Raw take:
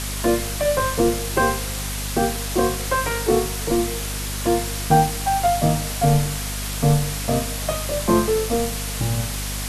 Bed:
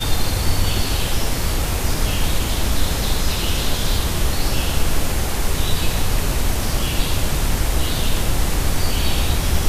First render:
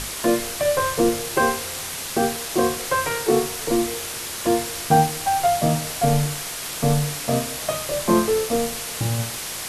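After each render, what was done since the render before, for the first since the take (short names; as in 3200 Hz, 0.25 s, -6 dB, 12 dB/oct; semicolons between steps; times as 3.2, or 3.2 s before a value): notches 50/100/150/200/250/300 Hz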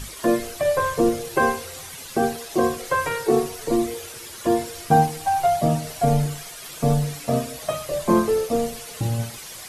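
denoiser 11 dB, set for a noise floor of -31 dBFS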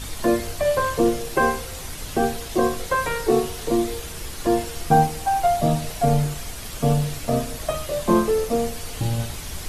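add bed -16 dB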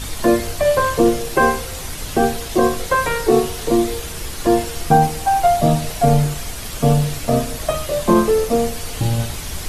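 gain +5 dB; limiter -3 dBFS, peak gain reduction 3 dB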